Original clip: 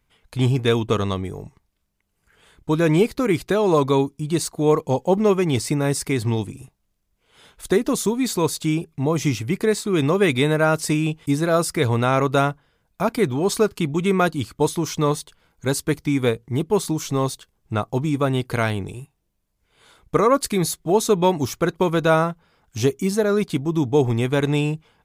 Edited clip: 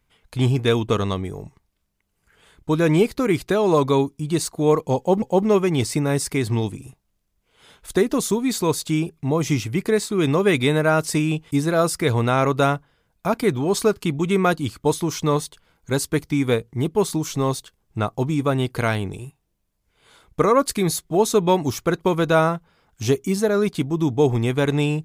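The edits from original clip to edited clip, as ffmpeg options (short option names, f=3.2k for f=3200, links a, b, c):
-filter_complex "[0:a]asplit=2[a][b];[a]atrim=end=5.222[c];[b]atrim=start=4.968[d];[c][d]acrossfade=d=0.004:c1=hsin:c2=hsin"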